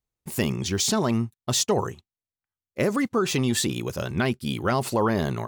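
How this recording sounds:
background noise floor −95 dBFS
spectral slope −4.5 dB per octave

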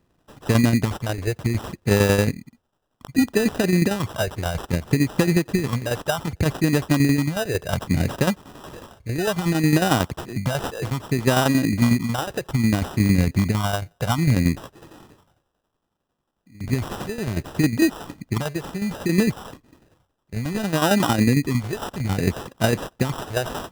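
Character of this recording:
tremolo saw down 11 Hz, depth 60%
phaser sweep stages 4, 0.63 Hz, lowest notch 210–4,900 Hz
aliases and images of a low sample rate 2,200 Hz, jitter 0%

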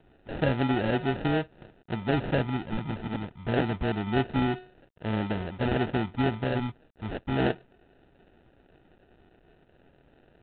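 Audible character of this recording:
a quantiser's noise floor 10 bits, dither none
phaser sweep stages 4, 0.25 Hz, lowest notch 480–1,800 Hz
aliases and images of a low sample rate 1,100 Hz, jitter 0%
G.726

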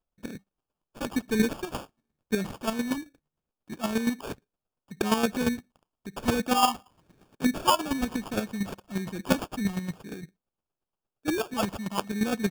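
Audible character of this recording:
phaser sweep stages 4, 0.99 Hz, lowest notch 430–1,000 Hz
aliases and images of a low sample rate 2,000 Hz, jitter 0%
chopped level 8.6 Hz, depth 60%, duty 20%

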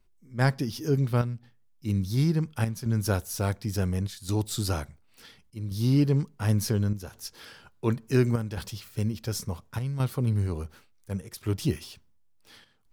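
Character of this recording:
chopped level 0.7 Hz, depth 60%, duty 85%

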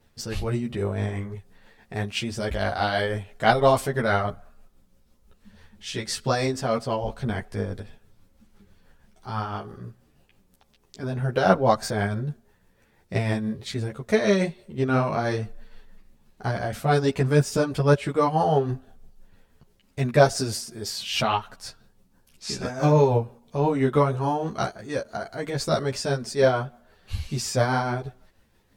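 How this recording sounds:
tremolo triangle 6.1 Hz, depth 45%
a shimmering, thickened sound

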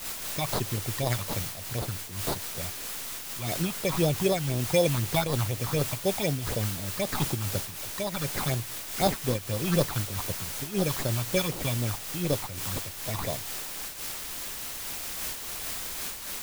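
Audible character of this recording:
aliases and images of a low sample rate 2,900 Hz, jitter 0%
phaser sweep stages 6, 4 Hz, lowest notch 430–2,300 Hz
a quantiser's noise floor 6 bits, dither triangular
amplitude modulation by smooth noise

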